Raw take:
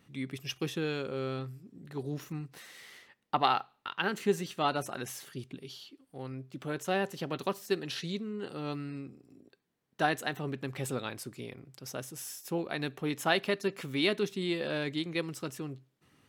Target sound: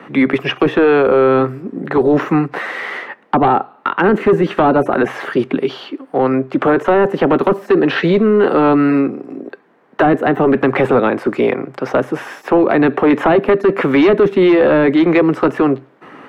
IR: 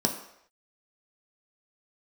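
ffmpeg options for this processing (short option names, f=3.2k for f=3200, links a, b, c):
-filter_complex "[0:a]acrossover=split=3600[a][b];[b]acompressor=threshold=-54dB:ratio=4:attack=1:release=60[c];[a][c]amix=inputs=2:normalize=0,acrossover=split=180 2100:gain=0.1 1 0.141[d][e][f];[d][e][f]amix=inputs=3:normalize=0,acrossover=split=140|450|7800[g][h][i][j];[i]acompressor=threshold=-45dB:ratio=20[k];[g][h][k][j]amix=inputs=4:normalize=0,asplit=2[l][m];[m]highpass=f=720:p=1,volume=14dB,asoftclip=type=tanh:threshold=-20dB[n];[l][n]amix=inputs=2:normalize=0,lowpass=f=1.4k:p=1,volume=-6dB,apsyclip=34.5dB,volume=-6dB"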